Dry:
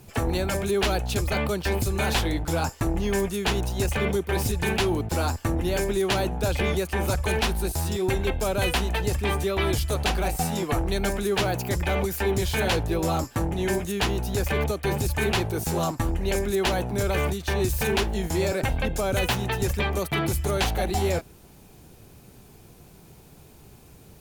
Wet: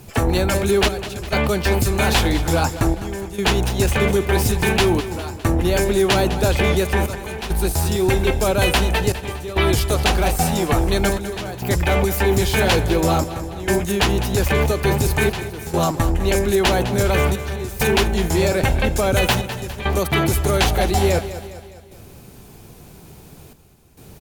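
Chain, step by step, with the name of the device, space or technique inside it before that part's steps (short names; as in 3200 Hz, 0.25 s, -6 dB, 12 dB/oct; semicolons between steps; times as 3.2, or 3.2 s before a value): trance gate with a delay (step gate "xxxxxx...xxxxx" 102 bpm -12 dB; feedback echo 0.204 s, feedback 51%, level -13 dB); gain +7 dB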